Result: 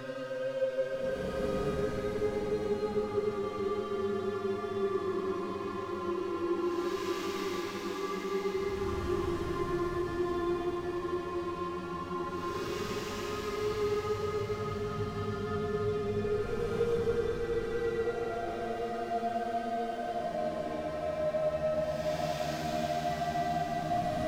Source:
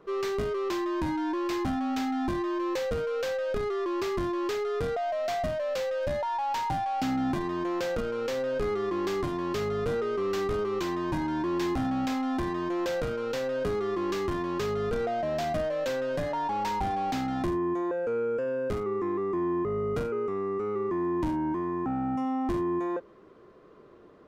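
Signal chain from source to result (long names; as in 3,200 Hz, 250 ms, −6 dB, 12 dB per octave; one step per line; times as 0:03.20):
dead-zone distortion −46.5 dBFS
chorus effect 0.87 Hz, delay 19.5 ms, depth 6.1 ms
extreme stretch with random phases 12×, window 0.10 s, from 0:13.54
feedback delay with all-pass diffusion 954 ms, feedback 45%, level −7.5 dB
level −1 dB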